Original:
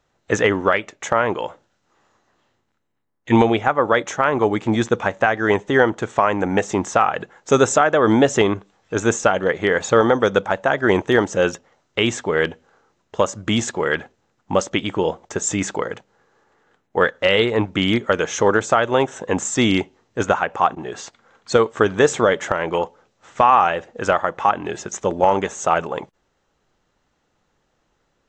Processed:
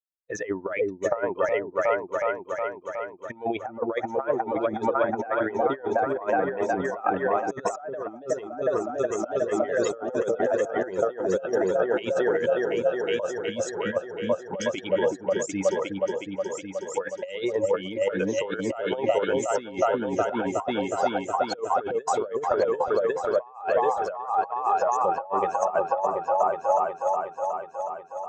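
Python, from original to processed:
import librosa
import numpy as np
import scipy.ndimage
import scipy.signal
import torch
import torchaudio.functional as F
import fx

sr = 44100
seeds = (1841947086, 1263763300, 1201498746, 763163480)

y = fx.bin_expand(x, sr, power=2.0)
y = fx.low_shelf(y, sr, hz=210.0, db=-6.0)
y = fx.echo_opening(y, sr, ms=366, hz=400, octaves=2, feedback_pct=70, wet_db=-3)
y = fx.over_compress(y, sr, threshold_db=-28.0, ratio=-0.5)
y = fx.peak_eq(y, sr, hz=630.0, db=14.5, octaves=2.0)
y = y * librosa.db_to_amplitude(-7.5)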